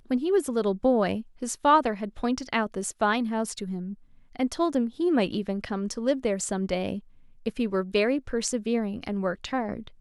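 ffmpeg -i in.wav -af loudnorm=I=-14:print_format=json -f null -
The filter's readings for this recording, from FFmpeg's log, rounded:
"input_i" : "-27.5",
"input_tp" : "-9.2",
"input_lra" : "3.2",
"input_thresh" : "-37.7",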